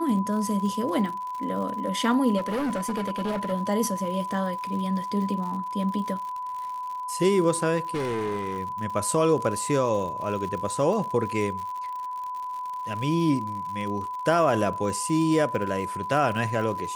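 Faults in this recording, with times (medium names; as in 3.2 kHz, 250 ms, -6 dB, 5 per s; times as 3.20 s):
crackle 88 per s -34 dBFS
whine 1 kHz -30 dBFS
2.37–3.53 s: clipped -24 dBFS
7.94–8.58 s: clipped -24.5 dBFS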